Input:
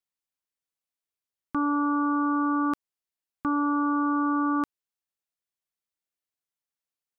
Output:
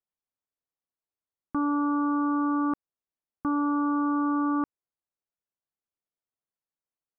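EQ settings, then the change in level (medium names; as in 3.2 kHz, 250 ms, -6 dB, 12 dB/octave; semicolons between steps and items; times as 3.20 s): low-pass 1.2 kHz 12 dB/octave; 0.0 dB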